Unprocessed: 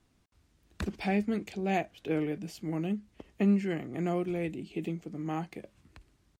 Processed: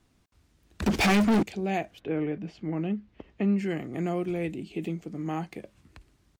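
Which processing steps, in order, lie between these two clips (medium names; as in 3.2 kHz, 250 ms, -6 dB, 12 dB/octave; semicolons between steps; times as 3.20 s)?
1.99–3.57 s: low-pass 2.3 kHz -> 3.9 kHz 12 dB/octave; in parallel at +1 dB: peak limiter -25.5 dBFS, peak gain reduction 8.5 dB; 0.86–1.43 s: on the sum: waveshaping leveller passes 5; trim -3.5 dB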